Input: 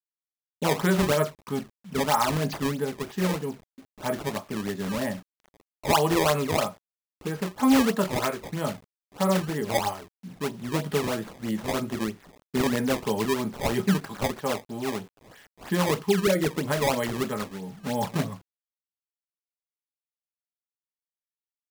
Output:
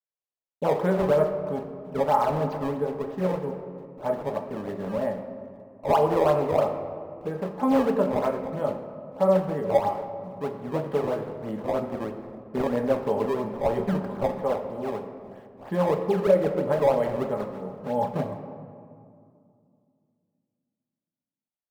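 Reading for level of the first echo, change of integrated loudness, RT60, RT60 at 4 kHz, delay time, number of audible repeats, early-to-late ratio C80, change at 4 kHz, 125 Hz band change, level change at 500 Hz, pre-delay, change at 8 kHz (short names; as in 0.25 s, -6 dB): none, +0.5 dB, 2.4 s, 1.1 s, none, none, 9.5 dB, -13.0 dB, -2.5 dB, +4.5 dB, 4 ms, under -15 dB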